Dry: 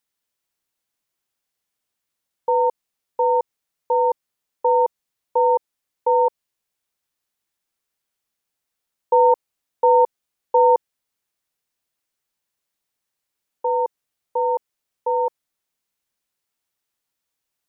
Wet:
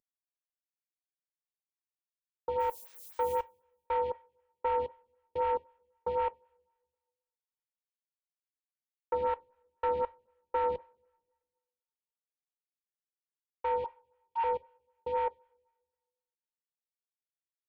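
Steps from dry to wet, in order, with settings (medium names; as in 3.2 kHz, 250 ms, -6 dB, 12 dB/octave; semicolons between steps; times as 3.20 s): CVSD coder 16 kbps; 13.84–14.44 s: steep high-pass 710 Hz 96 dB/octave; compression, threshold -18 dBFS, peak gain reduction 5 dB; saturation -18.5 dBFS, distortion -16 dB; 2.59–3.40 s: added noise blue -45 dBFS; two-slope reverb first 0.29 s, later 1.6 s, from -22 dB, DRR 15.5 dB; lamp-driven phase shifter 3.9 Hz; trim -4.5 dB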